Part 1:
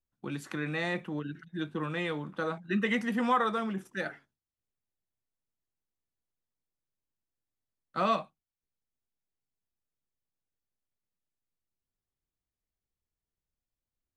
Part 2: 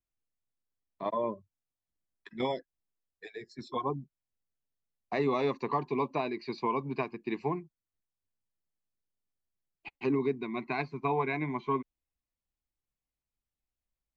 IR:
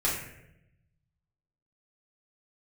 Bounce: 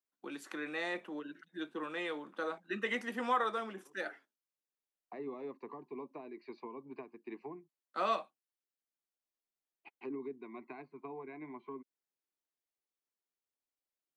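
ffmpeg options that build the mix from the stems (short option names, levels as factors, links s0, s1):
-filter_complex "[0:a]highpass=f=280:w=0.5412,highpass=f=280:w=1.3066,volume=0.596,asplit=2[s0][s1];[1:a]acrossover=split=250 2500:gain=0.0631 1 0.2[s2][s3][s4];[s2][s3][s4]amix=inputs=3:normalize=0,acrossover=split=360[s5][s6];[s6]acompressor=threshold=0.00891:ratio=10[s7];[s5][s7]amix=inputs=2:normalize=0,volume=0.447[s8];[s1]apad=whole_len=624603[s9];[s8][s9]sidechaincompress=threshold=0.001:ratio=8:attack=16:release=585[s10];[s0][s10]amix=inputs=2:normalize=0"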